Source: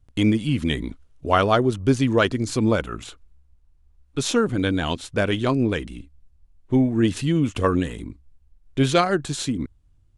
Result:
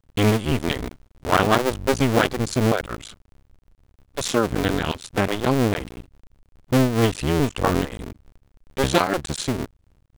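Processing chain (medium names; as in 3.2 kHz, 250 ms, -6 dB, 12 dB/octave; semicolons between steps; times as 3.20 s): cycle switcher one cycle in 2, muted; trim +2.5 dB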